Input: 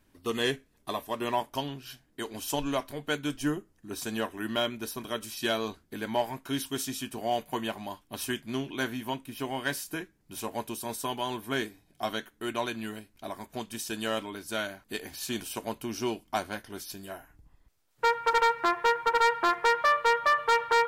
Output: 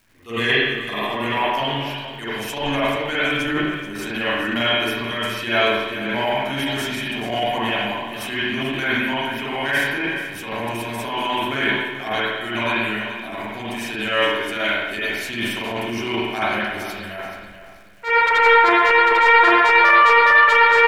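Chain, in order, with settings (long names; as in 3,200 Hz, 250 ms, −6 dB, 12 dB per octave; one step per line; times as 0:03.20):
parametric band 2,200 Hz +12 dB 1 octave
spring reverb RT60 1 s, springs 43/52 ms, chirp 70 ms, DRR −9.5 dB
surface crackle 590 per second −46 dBFS
on a send: repeating echo 431 ms, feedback 32%, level −13 dB
on the sum: transient designer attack −11 dB, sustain +3 dB
level −1 dB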